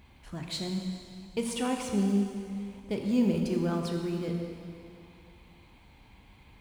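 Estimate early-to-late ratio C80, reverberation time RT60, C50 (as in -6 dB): 4.5 dB, 2.4 s, 3.5 dB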